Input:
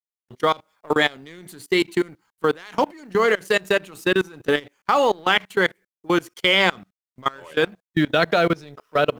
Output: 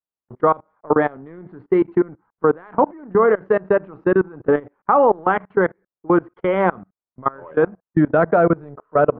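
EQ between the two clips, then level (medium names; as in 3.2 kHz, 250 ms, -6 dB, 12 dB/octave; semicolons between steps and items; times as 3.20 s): low-pass 1.3 kHz 24 dB/octave; +4.5 dB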